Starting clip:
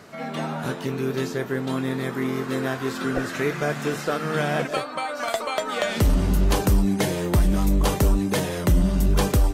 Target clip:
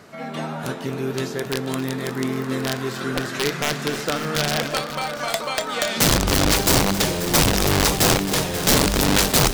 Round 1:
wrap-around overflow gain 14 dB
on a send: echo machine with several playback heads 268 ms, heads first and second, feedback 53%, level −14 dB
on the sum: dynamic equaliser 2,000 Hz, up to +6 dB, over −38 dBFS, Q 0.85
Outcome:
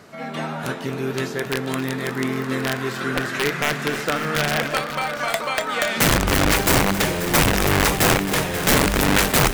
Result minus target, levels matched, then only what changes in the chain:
2,000 Hz band +3.5 dB
change: dynamic equaliser 4,600 Hz, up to +6 dB, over −38 dBFS, Q 0.85

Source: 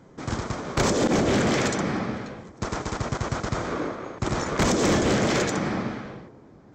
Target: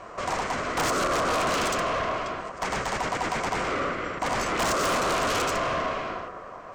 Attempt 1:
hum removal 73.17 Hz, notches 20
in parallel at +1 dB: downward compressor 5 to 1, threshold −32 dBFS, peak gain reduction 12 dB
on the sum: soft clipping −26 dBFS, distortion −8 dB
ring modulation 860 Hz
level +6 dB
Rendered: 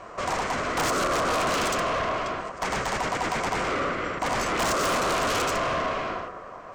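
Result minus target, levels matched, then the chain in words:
downward compressor: peak gain reduction −7 dB
hum removal 73.17 Hz, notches 20
in parallel at +1 dB: downward compressor 5 to 1, threshold −41 dBFS, peak gain reduction 19 dB
on the sum: soft clipping −26 dBFS, distortion −9 dB
ring modulation 860 Hz
level +6 dB

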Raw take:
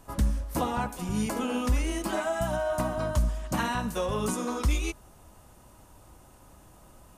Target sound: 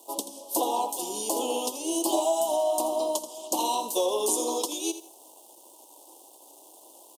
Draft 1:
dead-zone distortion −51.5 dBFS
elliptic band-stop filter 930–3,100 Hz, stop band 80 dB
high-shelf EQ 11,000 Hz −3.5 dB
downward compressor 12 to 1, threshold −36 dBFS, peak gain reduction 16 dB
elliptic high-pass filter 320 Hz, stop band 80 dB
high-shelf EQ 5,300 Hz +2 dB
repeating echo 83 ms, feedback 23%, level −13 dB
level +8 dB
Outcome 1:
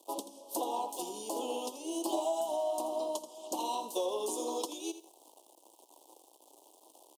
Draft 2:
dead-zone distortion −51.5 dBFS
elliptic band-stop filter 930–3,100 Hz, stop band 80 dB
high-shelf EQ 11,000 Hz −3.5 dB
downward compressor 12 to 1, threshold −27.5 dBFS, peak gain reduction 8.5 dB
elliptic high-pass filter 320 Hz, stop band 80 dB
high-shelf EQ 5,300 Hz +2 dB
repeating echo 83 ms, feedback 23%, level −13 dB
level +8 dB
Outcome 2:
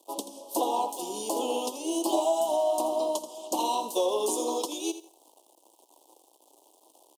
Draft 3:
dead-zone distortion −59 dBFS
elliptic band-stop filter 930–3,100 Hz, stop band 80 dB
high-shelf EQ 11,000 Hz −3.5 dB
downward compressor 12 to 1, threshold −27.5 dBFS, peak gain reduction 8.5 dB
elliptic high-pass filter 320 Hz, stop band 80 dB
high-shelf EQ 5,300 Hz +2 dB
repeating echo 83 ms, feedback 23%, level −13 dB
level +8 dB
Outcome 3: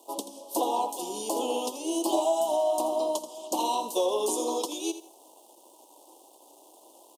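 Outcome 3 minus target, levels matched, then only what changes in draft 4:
8,000 Hz band −4.0 dB
change: second high-shelf EQ 5,300 Hz +9.5 dB

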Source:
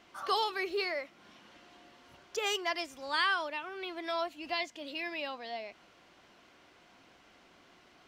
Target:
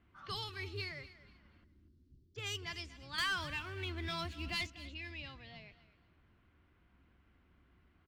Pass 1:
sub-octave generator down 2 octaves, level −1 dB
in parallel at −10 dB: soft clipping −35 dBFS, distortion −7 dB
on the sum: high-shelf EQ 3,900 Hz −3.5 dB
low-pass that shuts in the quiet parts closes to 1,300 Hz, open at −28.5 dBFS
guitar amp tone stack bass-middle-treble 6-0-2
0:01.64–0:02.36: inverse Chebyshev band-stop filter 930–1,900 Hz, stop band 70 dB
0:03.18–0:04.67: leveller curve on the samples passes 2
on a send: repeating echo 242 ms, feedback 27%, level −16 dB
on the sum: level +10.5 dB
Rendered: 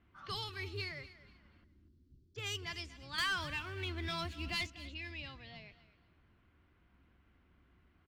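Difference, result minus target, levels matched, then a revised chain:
soft clipping: distortion −4 dB
sub-octave generator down 2 octaves, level −1 dB
in parallel at −10 dB: soft clipping −44 dBFS, distortion −3 dB
on the sum: high-shelf EQ 3,900 Hz −3.5 dB
low-pass that shuts in the quiet parts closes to 1,300 Hz, open at −28.5 dBFS
guitar amp tone stack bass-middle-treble 6-0-2
0:01.64–0:02.36: inverse Chebyshev band-stop filter 930–1,900 Hz, stop band 70 dB
0:03.18–0:04.67: leveller curve on the samples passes 2
on a send: repeating echo 242 ms, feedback 27%, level −16 dB
on the sum: level +10.5 dB

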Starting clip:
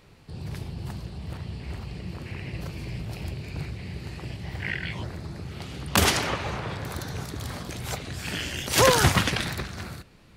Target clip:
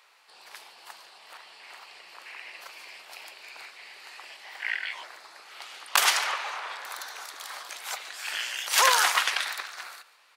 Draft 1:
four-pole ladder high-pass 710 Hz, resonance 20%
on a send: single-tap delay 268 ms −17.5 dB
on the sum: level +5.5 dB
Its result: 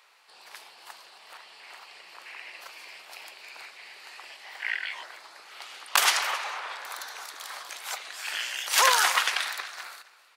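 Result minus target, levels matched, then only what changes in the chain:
echo 124 ms late
change: single-tap delay 144 ms −17.5 dB

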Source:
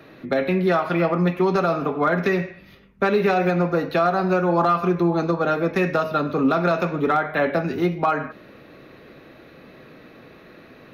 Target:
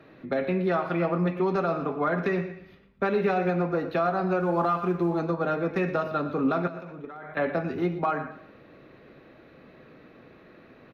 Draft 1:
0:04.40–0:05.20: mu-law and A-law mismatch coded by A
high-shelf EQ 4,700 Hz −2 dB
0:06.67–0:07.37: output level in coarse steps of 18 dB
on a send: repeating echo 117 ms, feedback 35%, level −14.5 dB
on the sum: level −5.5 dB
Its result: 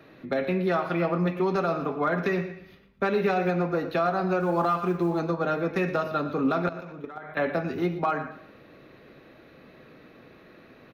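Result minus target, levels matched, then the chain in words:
8,000 Hz band +6.5 dB
0:04.40–0:05.20: mu-law and A-law mismatch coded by A
high-shelf EQ 4,700 Hz −12 dB
0:06.67–0:07.37: output level in coarse steps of 18 dB
on a send: repeating echo 117 ms, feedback 35%, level −14.5 dB
on the sum: level −5.5 dB

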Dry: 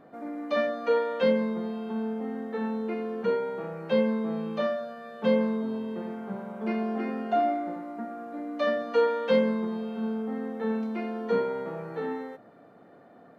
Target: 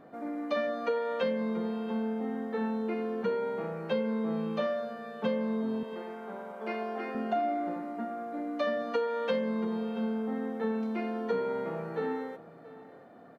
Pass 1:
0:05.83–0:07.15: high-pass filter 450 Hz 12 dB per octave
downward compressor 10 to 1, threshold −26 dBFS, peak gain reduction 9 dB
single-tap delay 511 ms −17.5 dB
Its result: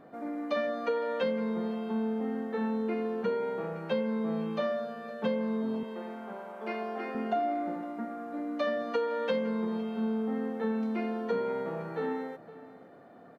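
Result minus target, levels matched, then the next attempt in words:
echo 171 ms early
0:05.83–0:07.15: high-pass filter 450 Hz 12 dB per octave
downward compressor 10 to 1, threshold −26 dBFS, peak gain reduction 9 dB
single-tap delay 682 ms −17.5 dB

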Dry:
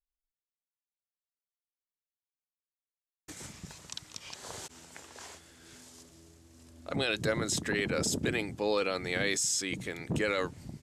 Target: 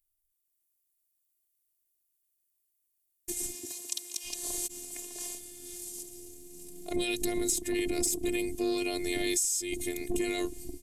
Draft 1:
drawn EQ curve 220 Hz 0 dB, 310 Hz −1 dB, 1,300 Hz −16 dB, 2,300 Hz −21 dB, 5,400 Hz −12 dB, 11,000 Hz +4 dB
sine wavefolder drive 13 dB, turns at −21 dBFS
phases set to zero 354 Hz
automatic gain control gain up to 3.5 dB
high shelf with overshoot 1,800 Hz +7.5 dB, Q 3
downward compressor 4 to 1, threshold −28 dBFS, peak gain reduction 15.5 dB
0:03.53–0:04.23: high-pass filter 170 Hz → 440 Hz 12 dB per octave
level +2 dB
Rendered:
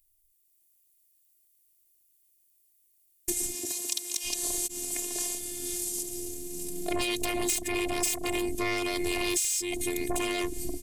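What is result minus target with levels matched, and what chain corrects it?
sine wavefolder: distortion +22 dB
drawn EQ curve 220 Hz 0 dB, 310 Hz −1 dB, 1,300 Hz −16 dB, 2,300 Hz −21 dB, 5,400 Hz −12 dB, 11,000 Hz +4 dB
sine wavefolder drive 2 dB, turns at −21 dBFS
phases set to zero 354 Hz
automatic gain control gain up to 3.5 dB
high shelf with overshoot 1,800 Hz +7.5 dB, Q 3
downward compressor 4 to 1, threshold −28 dBFS, peak gain reduction 11 dB
0:03.53–0:04.23: high-pass filter 170 Hz → 440 Hz 12 dB per octave
level +2 dB

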